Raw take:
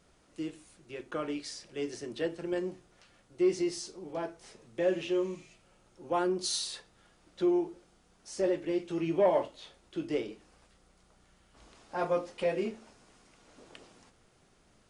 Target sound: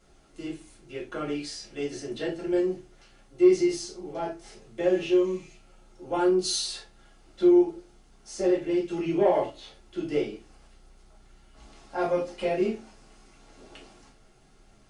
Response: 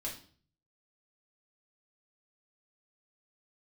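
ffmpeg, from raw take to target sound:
-filter_complex "[1:a]atrim=start_sample=2205,afade=t=out:st=0.16:d=0.01,atrim=end_sample=7497,asetrate=57330,aresample=44100[a];[0:a][a]afir=irnorm=-1:irlink=0,volume=6dB"

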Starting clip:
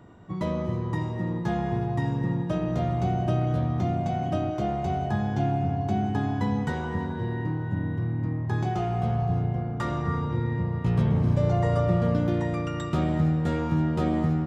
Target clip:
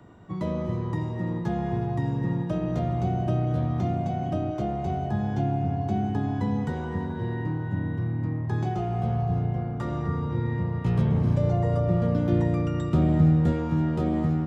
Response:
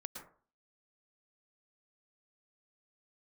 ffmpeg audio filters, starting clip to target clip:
-filter_complex "[0:a]asettb=1/sr,asplit=3[a][b][c];[a]atrim=end=12.304[d];[b]atrim=start=12.3:end=13.52,asetpts=PTS-STARTPTS,afade=t=in:d=0.004:c=qsin,afade=t=out:st=1.216:d=0.004:c=qsin,lowshelf=f=370:g=5.5[e];[c]atrim=start=13.516[f];[d][e]acrossfade=d=0.004:c1=hsin:c2=qsin[g];[g][f]acrossfade=d=0.004:c1=qsin:c2=hsin,acrossover=split=160|700[h][i][j];[j]alimiter=level_in=9dB:limit=-24dB:level=0:latency=1:release=394,volume=-9dB[k];[h][i][k]amix=inputs=3:normalize=0"

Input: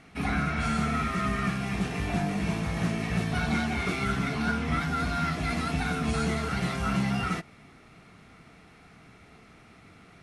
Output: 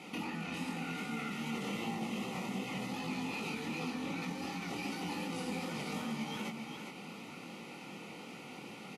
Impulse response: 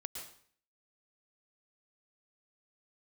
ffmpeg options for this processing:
-af "highpass=f=140:w=0.5412,highpass=f=140:w=1.3066,alimiter=level_in=8.5dB:limit=-24dB:level=0:latency=1:release=81,volume=-8.5dB,acompressor=threshold=-43dB:ratio=3,flanger=delay=20:depth=7.9:speed=2.3,asetrate=50274,aresample=44100,asuperstop=centerf=1600:order=4:qfactor=3.7,aecho=1:1:404:0.473,volume=9dB"

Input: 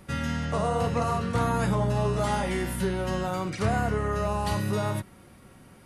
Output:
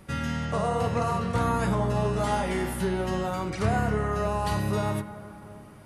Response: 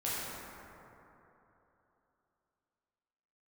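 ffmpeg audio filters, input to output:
-filter_complex "[0:a]asplit=2[a][b];[1:a]atrim=start_sample=2205,lowpass=3.5k[c];[b][c]afir=irnorm=-1:irlink=0,volume=-15.5dB[d];[a][d]amix=inputs=2:normalize=0,volume=-1dB"

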